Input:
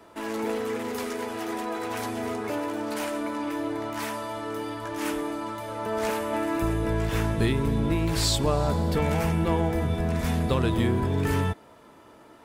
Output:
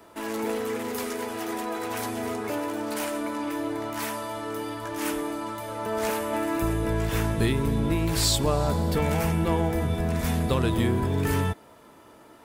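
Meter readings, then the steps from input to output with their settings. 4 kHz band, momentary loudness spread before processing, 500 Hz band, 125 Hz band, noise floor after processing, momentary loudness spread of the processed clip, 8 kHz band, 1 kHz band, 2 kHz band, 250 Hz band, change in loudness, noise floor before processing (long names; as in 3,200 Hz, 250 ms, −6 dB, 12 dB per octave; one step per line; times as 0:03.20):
+1.0 dB, 8 LU, 0.0 dB, 0.0 dB, −52 dBFS, 8 LU, +3.5 dB, 0.0 dB, +0.5 dB, 0.0 dB, 0.0 dB, −52 dBFS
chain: high-shelf EQ 9,300 Hz +8.5 dB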